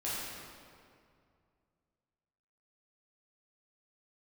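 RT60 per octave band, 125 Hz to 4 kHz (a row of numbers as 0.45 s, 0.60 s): 2.9 s, 2.5 s, 2.4 s, 2.2 s, 1.9 s, 1.5 s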